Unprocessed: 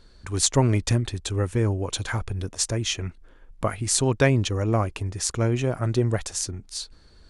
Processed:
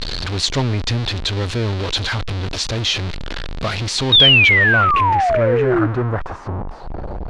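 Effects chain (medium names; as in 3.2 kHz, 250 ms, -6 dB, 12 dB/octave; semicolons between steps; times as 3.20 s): jump at every zero crossing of -16.5 dBFS; painted sound fall, 4.12–5.87 s, 300–3800 Hz -14 dBFS; low-pass sweep 4.1 kHz -> 770 Hz, 4.00–6.99 s; trim -3 dB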